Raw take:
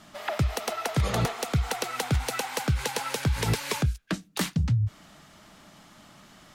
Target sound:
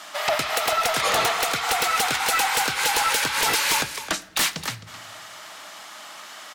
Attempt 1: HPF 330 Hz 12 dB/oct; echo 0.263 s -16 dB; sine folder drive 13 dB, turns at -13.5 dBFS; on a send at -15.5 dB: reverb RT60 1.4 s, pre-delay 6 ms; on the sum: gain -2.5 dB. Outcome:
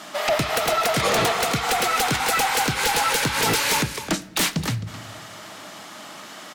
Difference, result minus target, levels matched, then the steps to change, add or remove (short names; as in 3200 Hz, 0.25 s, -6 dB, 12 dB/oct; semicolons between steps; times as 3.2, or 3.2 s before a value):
250 Hz band +9.0 dB
change: HPF 750 Hz 12 dB/oct